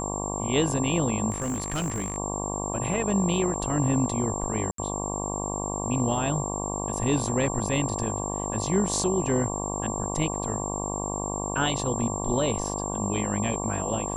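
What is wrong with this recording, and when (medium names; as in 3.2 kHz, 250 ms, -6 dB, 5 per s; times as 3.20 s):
buzz 50 Hz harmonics 23 -32 dBFS
whine 7.4 kHz -33 dBFS
1.30–2.18 s: clipped -24.5 dBFS
4.71–4.78 s: dropout 73 ms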